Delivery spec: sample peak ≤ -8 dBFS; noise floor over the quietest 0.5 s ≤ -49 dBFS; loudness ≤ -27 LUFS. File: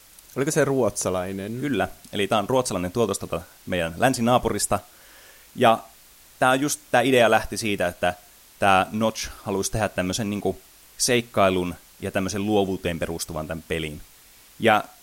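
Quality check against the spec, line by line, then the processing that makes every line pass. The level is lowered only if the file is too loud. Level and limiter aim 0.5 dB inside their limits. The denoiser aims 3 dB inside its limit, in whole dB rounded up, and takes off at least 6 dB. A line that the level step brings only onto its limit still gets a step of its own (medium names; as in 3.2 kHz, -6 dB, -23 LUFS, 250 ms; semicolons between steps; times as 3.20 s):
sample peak -4.5 dBFS: fail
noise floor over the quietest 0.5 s -51 dBFS: pass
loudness -23.5 LUFS: fail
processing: trim -4 dB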